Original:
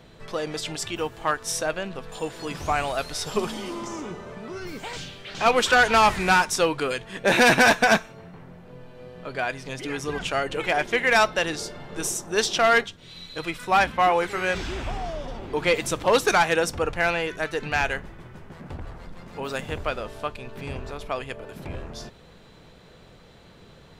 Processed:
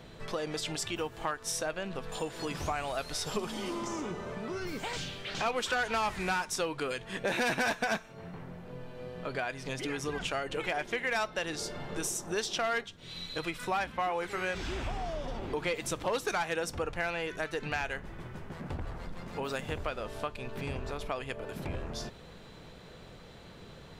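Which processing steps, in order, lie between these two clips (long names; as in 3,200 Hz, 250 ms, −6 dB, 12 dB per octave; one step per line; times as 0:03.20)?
downward compressor 3 to 1, threshold −33 dBFS, peak gain reduction 13.5 dB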